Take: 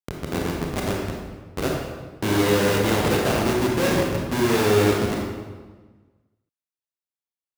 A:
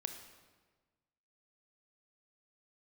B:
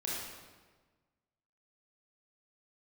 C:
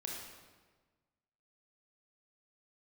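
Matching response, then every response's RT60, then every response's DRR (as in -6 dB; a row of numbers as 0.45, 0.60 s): C; 1.4, 1.4, 1.4 s; 6.0, -6.0, -2.0 dB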